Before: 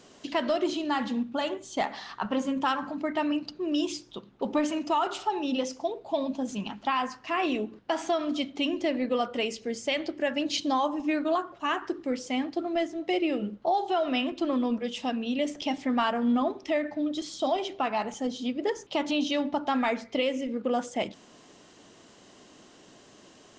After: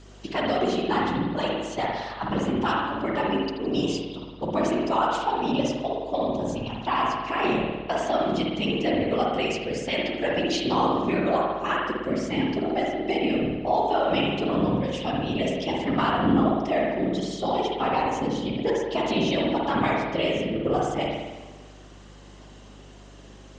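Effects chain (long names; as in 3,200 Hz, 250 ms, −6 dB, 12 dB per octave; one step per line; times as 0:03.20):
random phases in short frames
spring reverb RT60 1.2 s, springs 54 ms, chirp 30 ms, DRR −1.5 dB
mains hum 50 Hz, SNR 23 dB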